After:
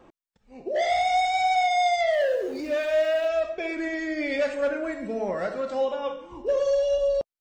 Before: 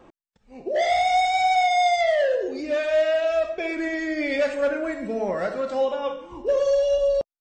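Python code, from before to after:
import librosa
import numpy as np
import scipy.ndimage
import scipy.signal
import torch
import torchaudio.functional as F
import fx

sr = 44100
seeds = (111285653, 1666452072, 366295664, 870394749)

y = fx.zero_step(x, sr, step_db=-40.5, at=(2.13, 3.28))
y = y * librosa.db_to_amplitude(-2.5)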